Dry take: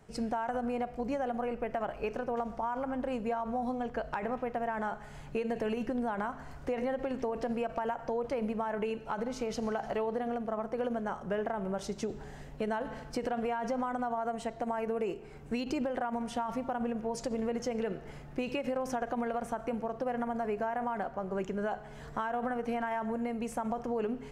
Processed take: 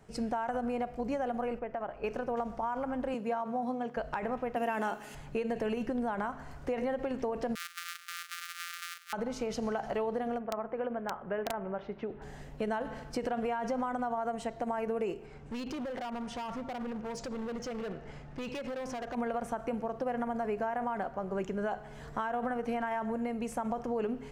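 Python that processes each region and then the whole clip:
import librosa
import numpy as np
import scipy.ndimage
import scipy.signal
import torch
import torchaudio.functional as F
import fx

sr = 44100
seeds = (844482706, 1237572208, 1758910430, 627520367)

y = fx.chain(x, sr, fx.lowpass(hz=1300.0, slope=6),
    fx.low_shelf(hz=430.0, db=-6.0), at=(1.59, 2.04))
y = fx.chain(y, sr, fx.highpass(hz=140.0, slope=24),
    fx.notch(hz=7400.0, q=26.0),
    fx.band_widen(depth_pct=40), at=(3.14, 3.97))
y = fx.chain(y, sr, fx.riaa(side='recording'),
    fx.notch(hz=7800.0, q=12.0),
    fx.small_body(hz=(280.0, 2700.0), ring_ms=20, db=14), at=(4.56, 5.15))
y = fx.chain(y, sr, fx.sample_sort(block=256),
    fx.brickwall_highpass(low_hz=1100.0), at=(7.55, 9.13))
y = fx.chain(y, sr, fx.lowpass(hz=2600.0, slope=24),
    fx.low_shelf(hz=230.0, db=-8.0),
    fx.overflow_wrap(gain_db=24.0), at=(10.39, 12.22))
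y = fx.chain(y, sr, fx.lowpass(hz=6900.0, slope=12),
    fx.peak_eq(hz=350.0, db=-4.0, octaves=0.25),
    fx.overload_stage(gain_db=35.0), at=(15.26, 19.15))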